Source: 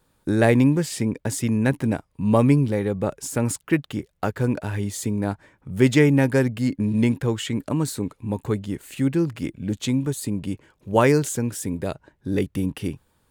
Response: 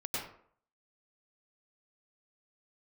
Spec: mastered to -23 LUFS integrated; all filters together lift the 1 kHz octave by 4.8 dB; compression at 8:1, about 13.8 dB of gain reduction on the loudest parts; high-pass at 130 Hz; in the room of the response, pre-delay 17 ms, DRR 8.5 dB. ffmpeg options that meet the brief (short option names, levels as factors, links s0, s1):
-filter_complex "[0:a]highpass=130,equalizer=f=1000:t=o:g=6,acompressor=threshold=0.0562:ratio=8,asplit=2[s0][s1];[1:a]atrim=start_sample=2205,adelay=17[s2];[s1][s2]afir=irnorm=-1:irlink=0,volume=0.237[s3];[s0][s3]amix=inputs=2:normalize=0,volume=2.37"